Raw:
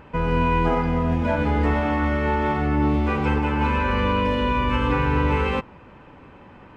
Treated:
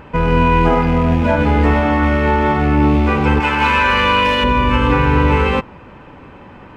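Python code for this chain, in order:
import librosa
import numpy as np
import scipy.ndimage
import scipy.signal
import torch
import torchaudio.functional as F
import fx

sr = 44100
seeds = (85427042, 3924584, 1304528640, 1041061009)

y = fx.rattle_buzz(x, sr, strikes_db=-22.0, level_db=-30.0)
y = fx.tilt_shelf(y, sr, db=-8.0, hz=720.0, at=(3.4, 4.44))
y = y * 10.0 ** (7.5 / 20.0)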